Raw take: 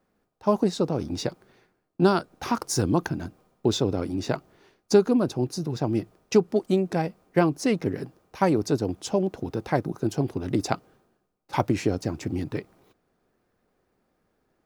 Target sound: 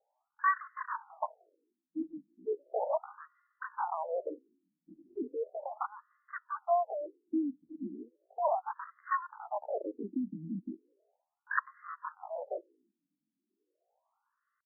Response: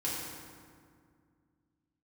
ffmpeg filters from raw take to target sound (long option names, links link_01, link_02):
-af "bass=frequency=250:gain=-2,treble=frequency=4000:gain=-6,asetrate=80880,aresample=44100,atempo=0.545254,afftfilt=real='re*between(b*sr/1024,220*pow(1500/220,0.5+0.5*sin(2*PI*0.36*pts/sr))/1.41,220*pow(1500/220,0.5+0.5*sin(2*PI*0.36*pts/sr))*1.41)':imag='im*between(b*sr/1024,220*pow(1500/220,0.5+0.5*sin(2*PI*0.36*pts/sr))/1.41,220*pow(1500/220,0.5+0.5*sin(2*PI*0.36*pts/sr))*1.41)':win_size=1024:overlap=0.75,volume=-3dB"